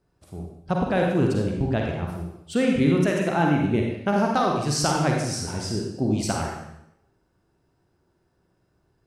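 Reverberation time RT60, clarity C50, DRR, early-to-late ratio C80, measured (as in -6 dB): 0.85 s, 1.0 dB, -0.5 dB, 4.0 dB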